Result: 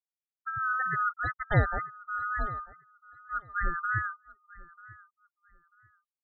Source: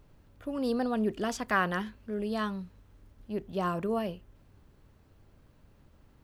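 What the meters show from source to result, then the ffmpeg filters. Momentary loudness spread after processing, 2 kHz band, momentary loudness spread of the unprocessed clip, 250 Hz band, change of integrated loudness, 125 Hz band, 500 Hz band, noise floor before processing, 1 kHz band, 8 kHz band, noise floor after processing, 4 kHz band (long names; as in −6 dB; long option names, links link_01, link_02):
21 LU, +6.0 dB, 11 LU, −12.5 dB, +1.0 dB, +8.0 dB, −8.5 dB, −62 dBFS, +3.5 dB, below −30 dB, below −85 dBFS, below −10 dB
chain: -filter_complex "[0:a]afftfilt=real='real(if(lt(b,960),b+48*(1-2*mod(floor(b/48),2)),b),0)':imag='imag(if(lt(b,960),b+48*(1-2*mod(floor(b/48),2)),b),0)':win_size=2048:overlap=0.75,afftfilt=real='re*gte(hypot(re,im),0.0562)':imag='im*gte(hypot(re,im),0.0562)':win_size=1024:overlap=0.75,lowshelf=frequency=160:width_type=q:width=3:gain=6,asplit=2[link_01][link_02];[link_02]aecho=0:1:942|1884:0.0944|0.0217[link_03];[link_01][link_03]amix=inputs=2:normalize=0"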